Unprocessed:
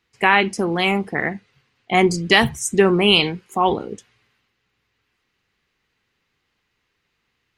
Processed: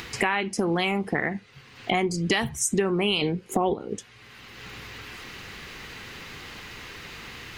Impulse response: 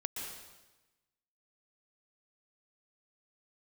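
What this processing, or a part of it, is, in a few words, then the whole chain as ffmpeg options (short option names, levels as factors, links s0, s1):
upward and downward compression: -filter_complex "[0:a]asettb=1/sr,asplit=3[s0][s1][s2];[s0]atrim=end=3.214[s3];[s1]atrim=start=3.21:end=3.74,asetpts=PTS-STARTPTS,afade=t=in:d=0.004:c=qsin,afade=t=out:st=0.526:d=0.004:c=qsin,lowshelf=f=750:t=q:w=1.5:g=7[s4];[s2]atrim=start=3.736[s5];[s3][s4]acrossfade=d=0.004:c1=hsin:c2=qsin[s6];[s6][s5]acrossfade=d=0.004:c1=qsin:c2=hsin,acompressor=mode=upward:threshold=0.158:ratio=2.5,acompressor=threshold=0.0891:ratio=6"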